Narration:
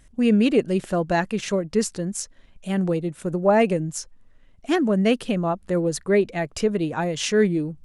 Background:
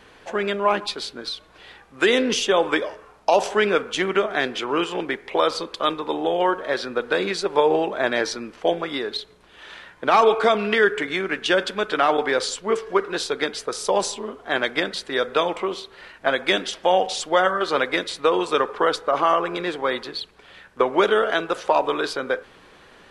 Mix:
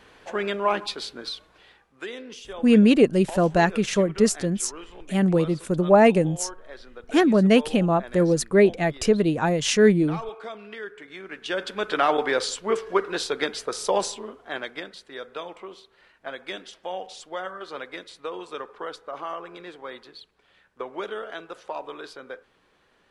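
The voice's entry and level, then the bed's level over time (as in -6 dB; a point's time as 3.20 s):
2.45 s, +2.5 dB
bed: 1.38 s -3 dB
2.15 s -19 dB
10.98 s -19 dB
11.90 s -2 dB
13.95 s -2 dB
14.97 s -14.5 dB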